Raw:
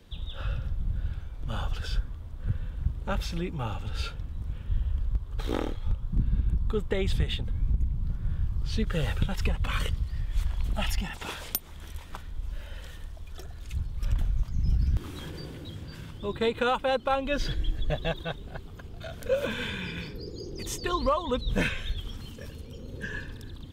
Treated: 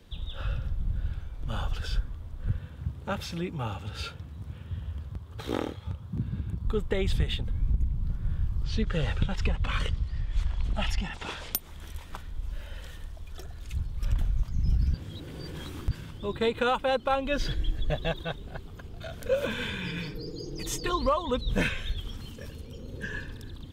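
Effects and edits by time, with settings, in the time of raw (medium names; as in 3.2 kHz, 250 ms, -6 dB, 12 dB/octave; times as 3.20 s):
2.58–6.65 s: high-pass 76 Hz 24 dB/octave
8.64–11.54 s: low-pass 6.5 kHz
14.94–15.91 s: reverse
19.84–20.90 s: comb 6.5 ms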